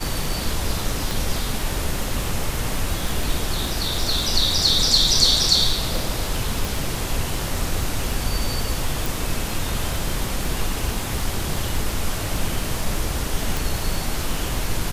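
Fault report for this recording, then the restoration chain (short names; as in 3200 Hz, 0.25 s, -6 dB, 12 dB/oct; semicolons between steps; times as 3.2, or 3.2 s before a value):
crackle 28/s -26 dBFS
1.11 pop
6.65 pop
9.06 pop
13.57 pop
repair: de-click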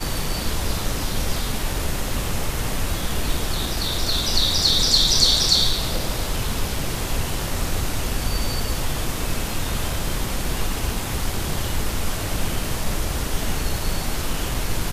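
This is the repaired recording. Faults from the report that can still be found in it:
1.11 pop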